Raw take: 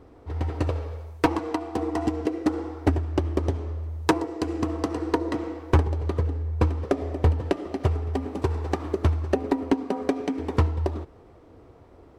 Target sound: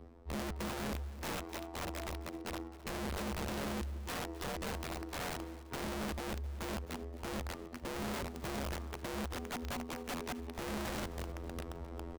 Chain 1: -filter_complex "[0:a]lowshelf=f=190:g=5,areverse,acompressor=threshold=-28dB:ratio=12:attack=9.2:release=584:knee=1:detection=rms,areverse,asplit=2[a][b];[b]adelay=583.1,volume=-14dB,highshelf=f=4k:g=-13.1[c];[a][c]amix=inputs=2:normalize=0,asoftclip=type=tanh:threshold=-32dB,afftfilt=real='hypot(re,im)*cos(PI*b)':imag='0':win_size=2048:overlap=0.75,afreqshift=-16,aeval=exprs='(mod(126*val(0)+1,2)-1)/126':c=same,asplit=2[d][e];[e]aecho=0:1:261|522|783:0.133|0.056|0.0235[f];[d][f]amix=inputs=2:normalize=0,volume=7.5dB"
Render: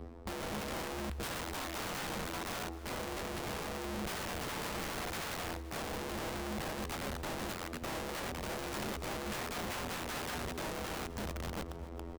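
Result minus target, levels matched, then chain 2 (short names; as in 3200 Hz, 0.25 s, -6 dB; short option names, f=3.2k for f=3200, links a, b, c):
compressor: peak gain reduction -7.5 dB
-filter_complex "[0:a]lowshelf=f=190:g=5,areverse,acompressor=threshold=-36dB:ratio=12:attack=9.2:release=584:knee=1:detection=rms,areverse,asplit=2[a][b];[b]adelay=583.1,volume=-14dB,highshelf=f=4k:g=-13.1[c];[a][c]amix=inputs=2:normalize=0,asoftclip=type=tanh:threshold=-32dB,afftfilt=real='hypot(re,im)*cos(PI*b)':imag='0':win_size=2048:overlap=0.75,afreqshift=-16,aeval=exprs='(mod(126*val(0)+1,2)-1)/126':c=same,asplit=2[d][e];[e]aecho=0:1:261|522|783:0.133|0.056|0.0235[f];[d][f]amix=inputs=2:normalize=0,volume=7.5dB"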